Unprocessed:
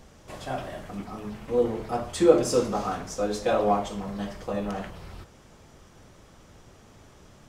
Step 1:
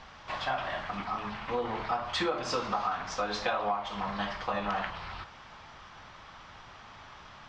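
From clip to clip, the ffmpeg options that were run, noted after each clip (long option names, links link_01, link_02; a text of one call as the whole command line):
ffmpeg -i in.wav -af "lowpass=frequency=4500:width=0.5412,lowpass=frequency=4500:width=1.3066,lowshelf=frequency=650:width_type=q:width=1.5:gain=-12,acompressor=threshold=-35dB:ratio=10,volume=8dB" out.wav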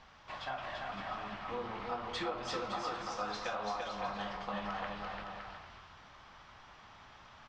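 ffmpeg -i in.wav -af "aecho=1:1:340|561|704.6|798|858.7:0.631|0.398|0.251|0.158|0.1,volume=-8.5dB" out.wav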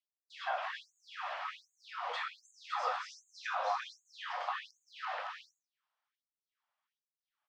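ffmpeg -i in.wav -filter_complex "[0:a]acrossover=split=2700[link_01][link_02];[link_02]acompressor=threshold=-56dB:ratio=4:attack=1:release=60[link_03];[link_01][link_03]amix=inputs=2:normalize=0,agate=range=-37dB:threshold=-47dB:ratio=16:detection=peak,afftfilt=real='re*gte(b*sr/1024,470*pow(6500/470,0.5+0.5*sin(2*PI*1.3*pts/sr)))':imag='im*gte(b*sr/1024,470*pow(6500/470,0.5+0.5*sin(2*PI*1.3*pts/sr)))':win_size=1024:overlap=0.75,volume=5dB" out.wav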